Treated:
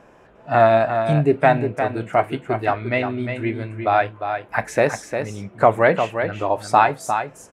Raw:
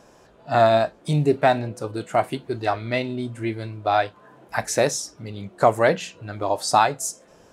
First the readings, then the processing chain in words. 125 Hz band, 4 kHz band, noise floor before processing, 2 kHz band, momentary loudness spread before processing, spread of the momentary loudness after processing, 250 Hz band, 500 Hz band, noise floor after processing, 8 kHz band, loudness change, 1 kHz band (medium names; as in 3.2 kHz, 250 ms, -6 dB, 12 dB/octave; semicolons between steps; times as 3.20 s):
+2.5 dB, -5.0 dB, -53 dBFS, +4.5 dB, 12 LU, 10 LU, +2.5 dB, +3.0 dB, -50 dBFS, -9.0 dB, +2.5 dB, +3.0 dB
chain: resonant high shelf 3.3 kHz -10 dB, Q 1.5; delay 353 ms -7.5 dB; trim +2 dB